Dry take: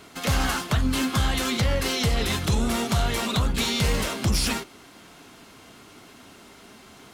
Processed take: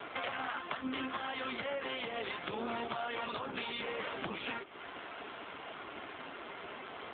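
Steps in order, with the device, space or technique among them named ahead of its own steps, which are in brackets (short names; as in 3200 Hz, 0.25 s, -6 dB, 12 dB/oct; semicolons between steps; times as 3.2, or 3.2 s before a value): voicemail (BPF 420–3200 Hz; compressor 10:1, threshold -42 dBFS, peak gain reduction 17.5 dB; gain +9 dB; AMR-NB 7.4 kbps 8000 Hz)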